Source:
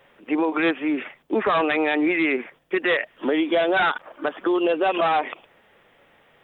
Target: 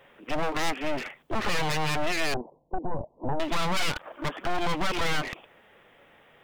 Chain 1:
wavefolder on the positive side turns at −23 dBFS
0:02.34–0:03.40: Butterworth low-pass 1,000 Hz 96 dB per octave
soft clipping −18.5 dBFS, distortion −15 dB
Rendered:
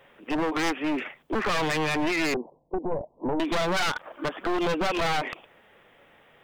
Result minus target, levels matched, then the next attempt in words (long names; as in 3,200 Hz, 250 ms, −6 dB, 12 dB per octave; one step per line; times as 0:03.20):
wavefolder on the positive side: distortion −11 dB
wavefolder on the positive side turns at −31 dBFS
0:02.34–0:03.40: Butterworth low-pass 1,000 Hz 96 dB per octave
soft clipping −18.5 dBFS, distortion −16 dB